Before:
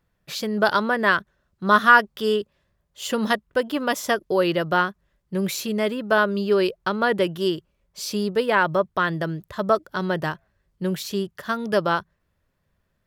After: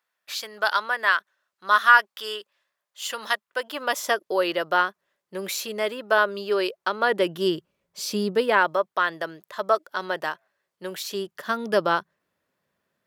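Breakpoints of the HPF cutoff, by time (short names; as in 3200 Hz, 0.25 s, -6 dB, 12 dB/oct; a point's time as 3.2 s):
3.42 s 950 Hz
4.04 s 460 Hz
6.99 s 460 Hz
7.49 s 160 Hz
8.36 s 160 Hz
8.78 s 530 Hz
10.92 s 530 Hz
11.48 s 240 Hz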